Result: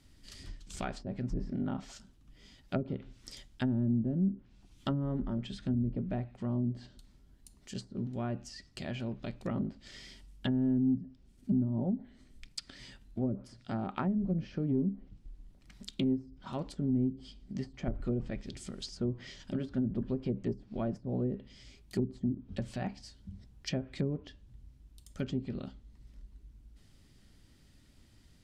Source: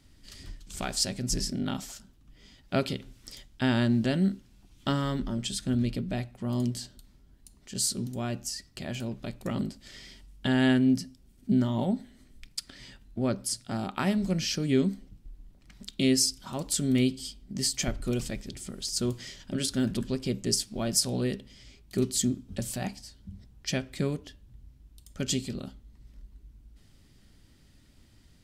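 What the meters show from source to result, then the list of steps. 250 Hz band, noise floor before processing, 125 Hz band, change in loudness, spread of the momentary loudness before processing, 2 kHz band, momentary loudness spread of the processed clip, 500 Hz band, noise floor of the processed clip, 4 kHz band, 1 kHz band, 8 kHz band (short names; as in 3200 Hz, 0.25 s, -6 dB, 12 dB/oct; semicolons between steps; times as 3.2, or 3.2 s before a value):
-4.0 dB, -59 dBFS, -3.5 dB, -5.5 dB, 19 LU, -11.5 dB, 18 LU, -6.0 dB, -61 dBFS, -14.5 dB, -6.5 dB, -22.0 dB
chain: soft clip -16 dBFS, distortion -21 dB; treble ducked by the level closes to 320 Hz, closed at -23.5 dBFS; gain -2.5 dB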